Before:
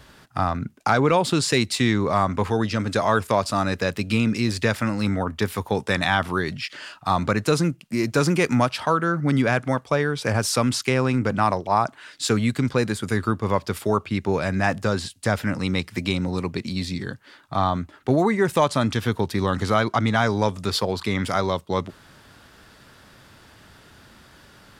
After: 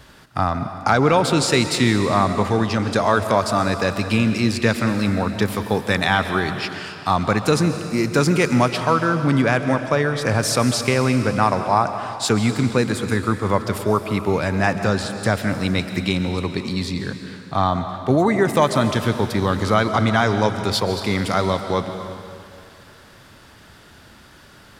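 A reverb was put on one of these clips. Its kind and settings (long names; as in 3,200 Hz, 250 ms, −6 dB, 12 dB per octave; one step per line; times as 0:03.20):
comb and all-pass reverb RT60 2.5 s, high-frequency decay 1×, pre-delay 95 ms, DRR 8 dB
level +2.5 dB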